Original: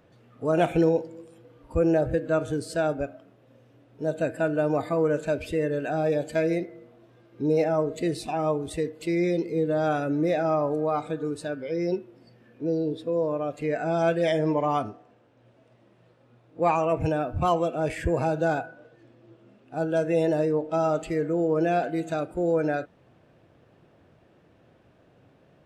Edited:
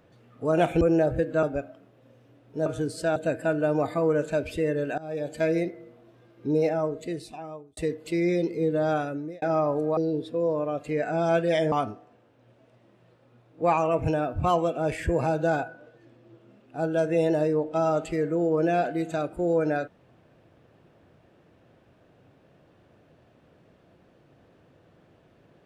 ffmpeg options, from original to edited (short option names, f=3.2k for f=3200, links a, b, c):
-filter_complex "[0:a]asplit=10[a][b][c][d][e][f][g][h][i][j];[a]atrim=end=0.812[k];[b]atrim=start=1.758:end=2.382[l];[c]atrim=start=2.878:end=4.112[m];[d]atrim=start=2.378:end=2.882[n];[e]atrim=start=4.108:end=5.93,asetpts=PTS-STARTPTS,afade=t=out:st=1.818:d=0.004:c=hsin:silence=0.1[o];[f]atrim=start=5.93:end=8.72,asetpts=PTS-STARTPTS,afade=t=in:d=0.47:silence=0.1,afade=t=out:st=1.51:d=1.28[p];[g]atrim=start=8.72:end=10.37,asetpts=PTS-STARTPTS,afade=t=in:d=0.004:c=hsin,afade=t=out:st=1.12:d=0.53[q];[h]atrim=start=10.37:end=10.922,asetpts=PTS-STARTPTS,afade=t=in:d=0.004:c=hsin[r];[i]atrim=start=12.698:end=14.452[s];[j]atrim=start=14.698[t];[k][l]acrossfade=d=0.004:c1=hsin:c2=hsin[u];[u][m]acrossfade=d=0.004:c1=hsin:c2=hsin[v];[v][n]acrossfade=d=0.004:c1=hsin:c2=hsin[w];[o][p][q][r]concat=n=4:v=0:a=1[x];[w][x]acrossfade=d=0.004:c1=hsin:c2=hsin[y];[y][s]acrossfade=d=0.004:c1=hsin:c2=hsin[z];[z][t]acrossfade=d=0.004:c1=hsin:c2=hsin"